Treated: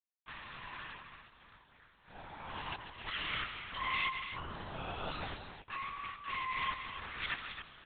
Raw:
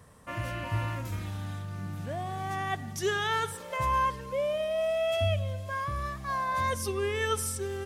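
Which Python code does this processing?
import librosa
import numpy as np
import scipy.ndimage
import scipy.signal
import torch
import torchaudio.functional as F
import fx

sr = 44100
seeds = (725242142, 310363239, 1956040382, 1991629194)

y = fx.self_delay(x, sr, depth_ms=0.37)
y = scipy.signal.sosfilt(scipy.signal.butter(4, 820.0, 'highpass', fs=sr, output='sos'), y)
y = np.sign(y) * np.maximum(np.abs(y) - 10.0 ** (-48.0 / 20.0), 0.0)
y = fx.echo_multitap(y, sr, ms=(143, 273), db=(-10.5, -9.0))
y = fx.lpc_vocoder(y, sr, seeds[0], excitation='whisper', order=8)
y = y * 10.0 ** (-4.5 / 20.0)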